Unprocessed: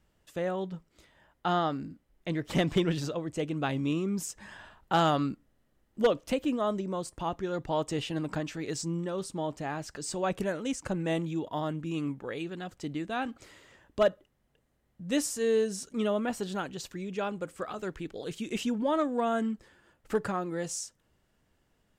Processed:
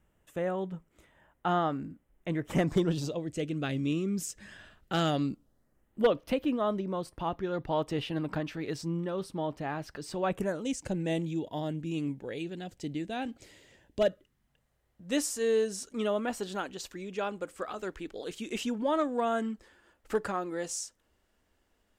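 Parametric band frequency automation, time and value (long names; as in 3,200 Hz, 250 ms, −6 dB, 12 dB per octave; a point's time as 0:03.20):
parametric band −13.5 dB 0.69 octaves
0:02.47 4,600 Hz
0:03.37 930 Hz
0:05.05 930 Hz
0:06.10 7,300 Hz
0:10.27 7,300 Hz
0:10.71 1,200 Hz
0:14.02 1,200 Hz
0:15.06 140 Hz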